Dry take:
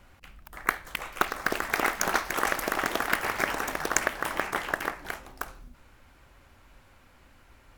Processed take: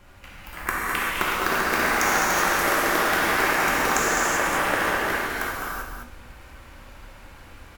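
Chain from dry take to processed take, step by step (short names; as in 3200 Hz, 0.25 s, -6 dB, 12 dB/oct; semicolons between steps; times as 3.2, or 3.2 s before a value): compressor 2.5:1, threshold -29 dBFS, peak gain reduction 8 dB; on a send: echo 0.206 s -6.5 dB; on the sum: non-linear reverb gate 0.42 s flat, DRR -7.5 dB; gain +2.5 dB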